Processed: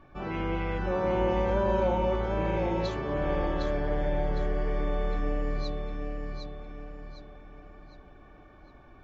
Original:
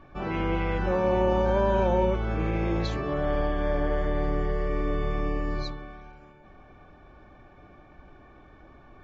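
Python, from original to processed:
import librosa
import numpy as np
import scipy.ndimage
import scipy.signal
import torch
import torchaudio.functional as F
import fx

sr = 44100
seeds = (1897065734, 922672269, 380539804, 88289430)

y = fx.echo_feedback(x, sr, ms=758, feedback_pct=40, wet_db=-5)
y = F.gain(torch.from_numpy(y), -3.5).numpy()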